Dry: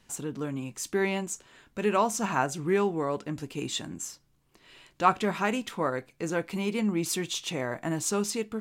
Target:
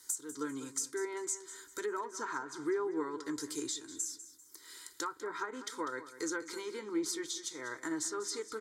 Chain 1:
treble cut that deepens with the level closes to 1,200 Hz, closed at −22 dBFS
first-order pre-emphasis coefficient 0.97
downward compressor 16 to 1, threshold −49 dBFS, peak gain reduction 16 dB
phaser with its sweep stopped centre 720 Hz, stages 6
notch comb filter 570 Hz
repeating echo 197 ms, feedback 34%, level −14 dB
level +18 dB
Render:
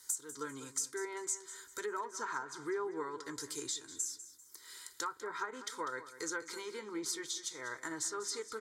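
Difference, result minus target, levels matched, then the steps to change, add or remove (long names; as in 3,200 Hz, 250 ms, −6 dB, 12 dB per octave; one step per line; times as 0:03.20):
250 Hz band −5.5 dB
add after downward compressor: parametric band 300 Hz +9 dB 0.62 octaves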